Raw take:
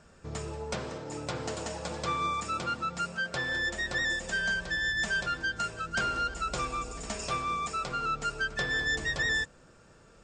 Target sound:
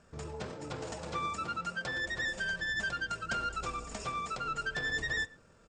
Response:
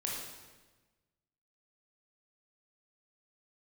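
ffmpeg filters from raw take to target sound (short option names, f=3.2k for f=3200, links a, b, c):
-filter_complex "[0:a]atempo=1.8,asplit=2[a][b];[1:a]atrim=start_sample=2205,afade=t=out:st=0.18:d=0.01,atrim=end_sample=8379,lowpass=3.6k[c];[b][c]afir=irnorm=-1:irlink=0,volume=-17dB[d];[a][d]amix=inputs=2:normalize=0,volume=-4.5dB"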